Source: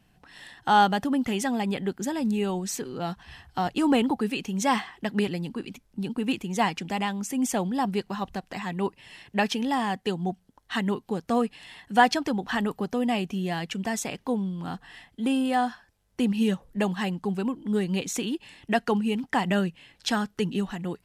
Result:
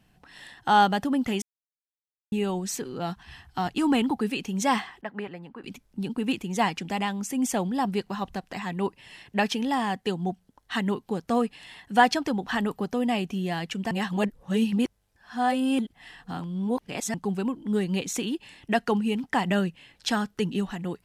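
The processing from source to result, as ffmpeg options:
-filter_complex "[0:a]asettb=1/sr,asplit=3[a][b][c];[a]atrim=end=3.104[d];[b]atrim=start=3.1:end=4.17,asetpts=PTS-STARTPTS,afade=t=in:d=0.004:c=qsin,afade=t=out:st=1.066:d=0.004:c=qsin,equalizer=f=540:t=o:w=0.51:g=-7.5[e];[c]atrim=start=4.166[f];[d][e]acrossfade=d=0.004:c1=hsin:c2=qsin[g];[g][f]acrossfade=d=0.004:c1=qsin:c2=hsin,asettb=1/sr,asplit=3[h][i][j];[h]atrim=end=5.014[k];[i]atrim=start=5.01:end=5.64,asetpts=PTS-STARTPTS,afade=t=in:d=0.004:c=qsin,afade=t=out:st=0.626:d=0.004:c=qsin,acrossover=split=570 2100:gain=0.251 1 0.0794[l][m][n];[l][m][n]amix=inputs=3:normalize=0[o];[j]atrim=start=5.636[p];[k][o]acrossfade=d=0.004:c1=hsin:c2=qsin[q];[q][p]acrossfade=d=0.004:c1=qsin:c2=hsin,asplit=5[r][s][t][u][v];[r]atrim=end=1.42,asetpts=PTS-STARTPTS,afade=t=out:st=1.416:d=0.004:c=hsin[w];[s]atrim=start=1.42:end=2.32,asetpts=PTS-STARTPTS,volume=0[x];[t]atrim=start=2.32:end=13.912,asetpts=PTS-STARTPTS,afade=t=in:d=0.004:c=hsin[y];[u]atrim=start=13.908:end=17.142,asetpts=PTS-STARTPTS,areverse[z];[v]atrim=start=17.138[aa];[w][x][y]concat=n=3:v=0:a=1[ab];[ab][z]acrossfade=d=0.004:c1=hsin:c2=hsin[ac];[ac][aa]acrossfade=d=0.004:c1=hsin:c2=hsin"

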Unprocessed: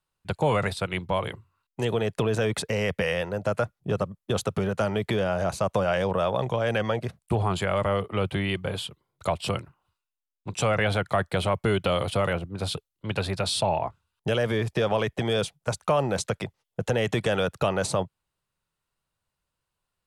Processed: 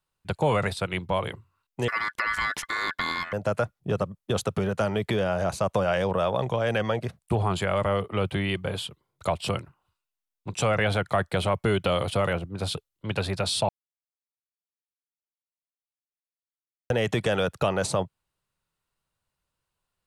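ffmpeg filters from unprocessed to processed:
-filter_complex "[0:a]asettb=1/sr,asplit=3[a][b][c];[a]atrim=end=1.884[d];[b]atrim=start=1.88:end=3.33,asetpts=PTS-STARTPTS,afade=t=in:d=0.004:c=qsin,afade=t=out:st=1.446:d=0.004:c=qsin,aeval=exprs='val(0)*sin(2*PI*1600*n/s)':c=same[e];[c]atrim=start=3.326[f];[d][e]acrossfade=d=0.004:c1=hsin:c2=qsin[g];[g][f]acrossfade=d=0.004:c1=qsin:c2=hsin,asplit=3[h][i][j];[h]atrim=end=13.69,asetpts=PTS-STARTPTS,afade=t=out:st=13.686:d=0.004:c=hsin[k];[i]atrim=start=13.69:end=16.9,asetpts=PTS-STARTPTS,volume=0[l];[j]atrim=start=16.9,asetpts=PTS-STARTPTS,afade=t=in:d=0.004:c=hsin[m];[k][l][m]concat=n=3:v=0:a=1"

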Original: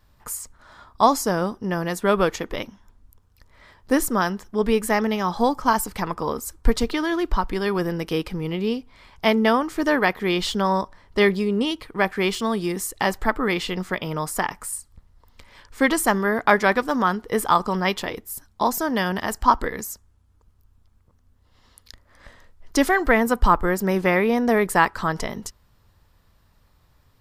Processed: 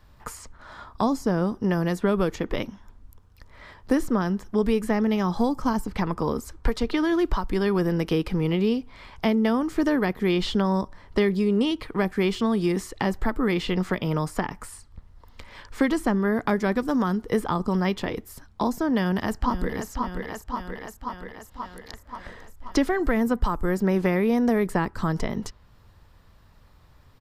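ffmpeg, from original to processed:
-filter_complex "[0:a]asplit=2[a][b];[b]afade=t=in:st=18.9:d=0.01,afade=t=out:st=19.9:d=0.01,aecho=0:1:530|1060|1590|2120|2650|3180|3710:0.334965|0.200979|0.120588|0.0723525|0.0434115|0.0260469|0.0156281[c];[a][c]amix=inputs=2:normalize=0,highshelf=f=5.7k:g=-7.5,acrossover=split=370|5400[d][e][f];[d]acompressor=threshold=-26dB:ratio=4[g];[e]acompressor=threshold=-34dB:ratio=4[h];[f]acompressor=threshold=-53dB:ratio=4[i];[g][h][i]amix=inputs=3:normalize=0,volume=5dB"

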